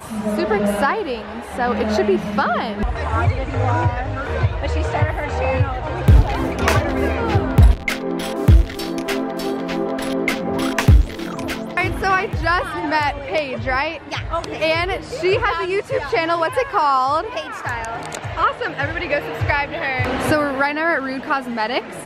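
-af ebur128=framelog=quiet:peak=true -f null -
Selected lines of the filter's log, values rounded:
Integrated loudness:
  I:         -19.9 LUFS
  Threshold: -29.9 LUFS
Loudness range:
  LRA:         3.0 LU
  Threshold: -39.8 LUFS
  LRA low:   -20.9 LUFS
  LRA high:  -17.9 LUFS
True peak:
  Peak:       -2.9 dBFS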